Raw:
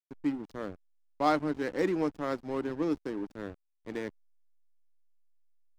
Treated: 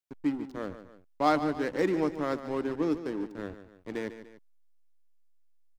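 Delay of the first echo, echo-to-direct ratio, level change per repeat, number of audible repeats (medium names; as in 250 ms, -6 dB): 146 ms, -11.0 dB, -7.0 dB, 2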